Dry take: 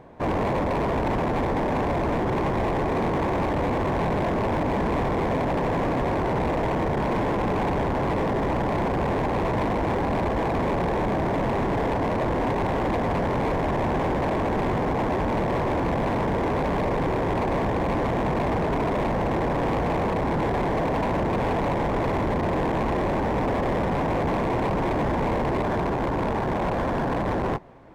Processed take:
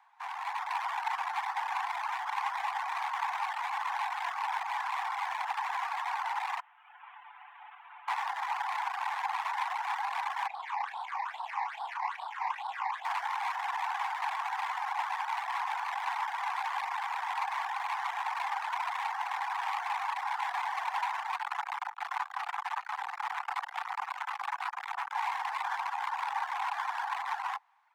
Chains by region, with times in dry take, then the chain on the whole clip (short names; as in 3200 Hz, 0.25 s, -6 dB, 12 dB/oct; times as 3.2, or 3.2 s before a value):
6.6–8.08 delta modulation 16 kbps, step -51 dBFS + tilt shelf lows -6 dB, about 1300 Hz + comb 6.9 ms, depth 62%
10.47–13.05 LPF 3200 Hz 6 dB/oct + phaser stages 8, 2.4 Hz, lowest notch 400–2200 Hz + doubler 34 ms -6.5 dB
21.37–25.15 comb 6.9 ms, depth 90% + core saturation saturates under 440 Hz
whole clip: reverb removal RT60 0.93 s; steep high-pass 780 Hz 96 dB/oct; AGC gain up to 7.5 dB; gain -7.5 dB